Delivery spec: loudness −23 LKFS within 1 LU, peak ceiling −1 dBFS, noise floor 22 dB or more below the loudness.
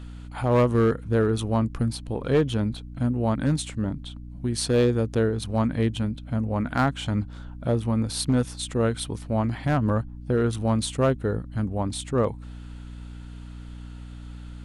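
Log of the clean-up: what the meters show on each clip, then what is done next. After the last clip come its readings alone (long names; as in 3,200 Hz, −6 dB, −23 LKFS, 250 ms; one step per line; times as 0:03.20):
share of clipped samples 0.8%; peaks flattened at −14.0 dBFS; mains hum 60 Hz; hum harmonics up to 300 Hz; level of the hum −38 dBFS; integrated loudness −25.5 LKFS; sample peak −14.0 dBFS; target loudness −23.0 LKFS
→ clipped peaks rebuilt −14 dBFS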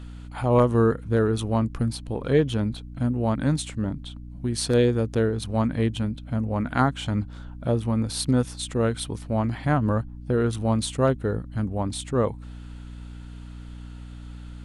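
share of clipped samples 0.0%; mains hum 60 Hz; hum harmonics up to 180 Hz; level of the hum −38 dBFS
→ mains-hum notches 60/120/180 Hz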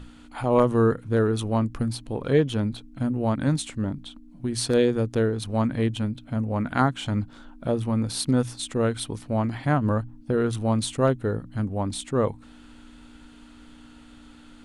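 mains hum none found; integrated loudness −25.5 LKFS; sample peak −6.0 dBFS; target loudness −23.0 LKFS
→ level +2.5 dB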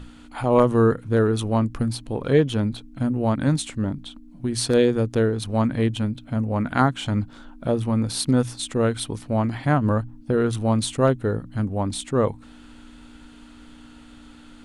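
integrated loudness −23.0 LKFS; sample peak −3.5 dBFS; background noise floor −46 dBFS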